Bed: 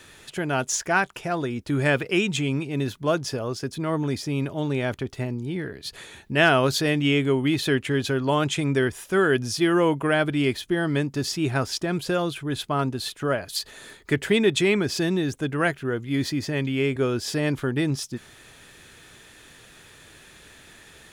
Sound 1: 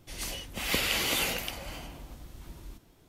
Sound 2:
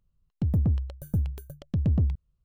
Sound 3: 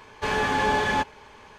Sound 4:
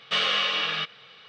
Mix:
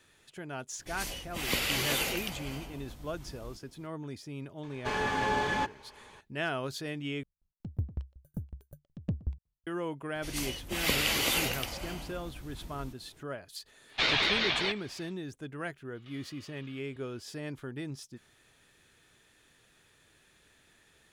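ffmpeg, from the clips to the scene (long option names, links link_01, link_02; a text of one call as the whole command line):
ffmpeg -i bed.wav -i cue0.wav -i cue1.wav -i cue2.wav -i cue3.wav -filter_complex "[1:a]asplit=2[link_01][link_02];[4:a]asplit=2[link_03][link_04];[0:a]volume=-15dB[link_05];[2:a]aeval=exprs='val(0)*pow(10,-33*if(lt(mod(5.4*n/s,1),2*abs(5.4)/1000),1-mod(5.4*n/s,1)/(2*abs(5.4)/1000),(mod(5.4*n/s,1)-2*abs(5.4)/1000)/(1-2*abs(5.4)/1000))/20)':channel_layout=same[link_06];[link_03]aeval=exprs='val(0)*sin(2*PI*630*n/s+630*0.35/5.2*sin(2*PI*5.2*n/s))':channel_layout=same[link_07];[link_04]acompressor=threshold=-38dB:ratio=12:attack=4.5:release=118:knee=1:detection=peak[link_08];[link_05]asplit=2[link_09][link_10];[link_09]atrim=end=7.234[link_11];[link_06]atrim=end=2.44,asetpts=PTS-STARTPTS,volume=-3.5dB[link_12];[link_10]atrim=start=9.666[link_13];[link_01]atrim=end=3.08,asetpts=PTS-STARTPTS,volume=-2dB,afade=type=in:duration=0.004:curve=hsin,afade=type=out:start_time=3.076:duration=0.004:curve=hsin,adelay=790[link_14];[3:a]atrim=end=1.58,asetpts=PTS-STARTPTS,volume=-6.5dB,afade=type=in:duration=0.004:curve=hsin,afade=type=out:start_time=1.576:duration=0.004:curve=hsin,adelay=4630[link_15];[link_02]atrim=end=3.08,asetpts=PTS-STARTPTS,afade=type=in:duration=0.004:curve=hsin,afade=type=out:start_time=3.076:duration=0.004:curve=hsin,adelay=10150[link_16];[link_07]atrim=end=1.28,asetpts=PTS-STARTPTS,afade=type=in:duration=0.1,afade=type=out:start_time=1.18:duration=0.1,adelay=13870[link_17];[link_08]atrim=end=1.28,asetpts=PTS-STARTPTS,volume=-17.5dB,afade=type=in:duration=0.004:curve=hsin,afade=type=out:start_time=1.276:duration=0.004:curve=hsin,adelay=15950[link_18];[link_11][link_12]acrossfade=duration=0.004:curve1=hsin:curve2=hsin[link_19];[link_19][link_13]acrossfade=duration=0.004:curve1=hsin:curve2=hsin[link_20];[link_20][link_14][link_15][link_16][link_17][link_18]amix=inputs=6:normalize=0" out.wav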